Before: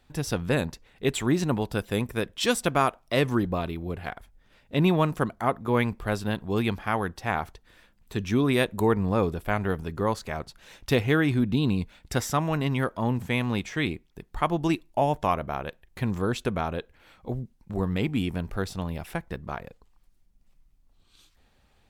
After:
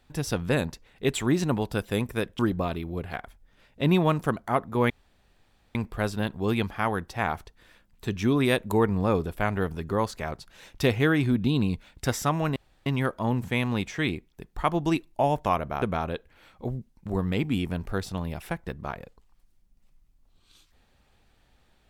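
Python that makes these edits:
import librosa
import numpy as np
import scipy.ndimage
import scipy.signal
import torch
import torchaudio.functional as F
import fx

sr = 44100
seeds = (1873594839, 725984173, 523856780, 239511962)

y = fx.edit(x, sr, fx.cut(start_s=2.39, length_s=0.93),
    fx.insert_room_tone(at_s=5.83, length_s=0.85),
    fx.insert_room_tone(at_s=12.64, length_s=0.3),
    fx.cut(start_s=15.6, length_s=0.86), tone=tone)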